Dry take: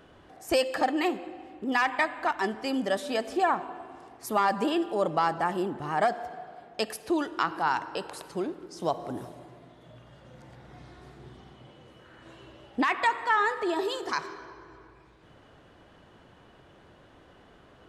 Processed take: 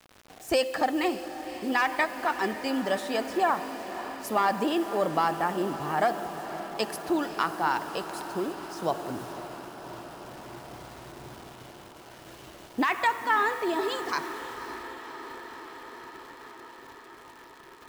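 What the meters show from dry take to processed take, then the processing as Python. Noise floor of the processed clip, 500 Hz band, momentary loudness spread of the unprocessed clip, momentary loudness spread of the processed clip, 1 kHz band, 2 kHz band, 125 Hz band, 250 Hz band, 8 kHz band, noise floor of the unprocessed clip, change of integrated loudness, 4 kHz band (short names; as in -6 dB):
-50 dBFS, +0.5 dB, 16 LU, 20 LU, +0.5 dB, +0.5 dB, +0.5 dB, +0.5 dB, +2.0 dB, -56 dBFS, 0.0 dB, +0.5 dB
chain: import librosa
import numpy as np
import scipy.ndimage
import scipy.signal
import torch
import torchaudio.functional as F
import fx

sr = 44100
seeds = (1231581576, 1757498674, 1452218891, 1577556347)

y = fx.quant_dither(x, sr, seeds[0], bits=8, dither='none')
y = fx.echo_diffused(y, sr, ms=547, feedback_pct=77, wet_db=-13.0)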